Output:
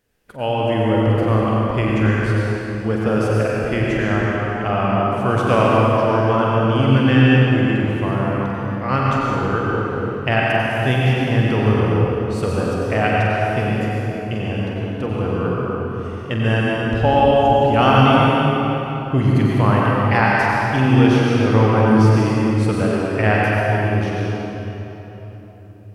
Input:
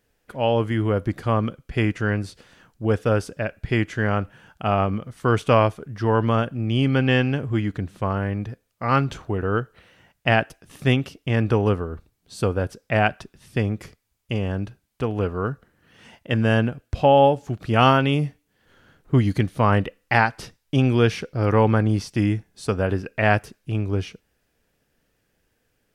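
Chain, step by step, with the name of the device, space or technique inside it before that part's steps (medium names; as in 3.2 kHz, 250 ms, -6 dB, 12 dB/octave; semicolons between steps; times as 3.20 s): tunnel (flutter echo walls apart 7.9 m, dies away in 0.33 s; reverberation RT60 3.8 s, pre-delay 85 ms, DRR -5 dB); trim -1.5 dB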